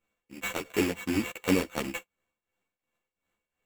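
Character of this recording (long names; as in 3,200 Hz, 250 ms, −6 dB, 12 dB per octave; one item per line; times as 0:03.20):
a buzz of ramps at a fixed pitch in blocks of 16 samples
tremolo triangle 2.8 Hz, depth 80%
aliases and images of a low sample rate 5,000 Hz, jitter 0%
a shimmering, thickened sound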